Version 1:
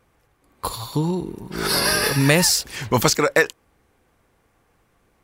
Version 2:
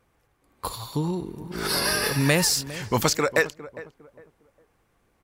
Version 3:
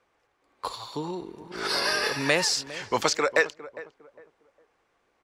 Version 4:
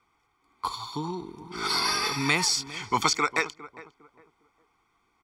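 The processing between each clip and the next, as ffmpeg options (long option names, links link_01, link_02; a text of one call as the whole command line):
ffmpeg -i in.wav -filter_complex "[0:a]asplit=2[link_01][link_02];[link_02]adelay=406,lowpass=frequency=1100:poles=1,volume=-15dB,asplit=2[link_03][link_04];[link_04]adelay=406,lowpass=frequency=1100:poles=1,volume=0.32,asplit=2[link_05][link_06];[link_06]adelay=406,lowpass=frequency=1100:poles=1,volume=0.32[link_07];[link_01][link_03][link_05][link_07]amix=inputs=4:normalize=0,volume=-4.5dB" out.wav
ffmpeg -i in.wav -filter_complex "[0:a]acrossover=split=320 7400:gain=0.178 1 0.0891[link_01][link_02][link_03];[link_01][link_02][link_03]amix=inputs=3:normalize=0" out.wav
ffmpeg -i in.wav -af "aecho=1:1:0.9:1,volume=-2dB" out.wav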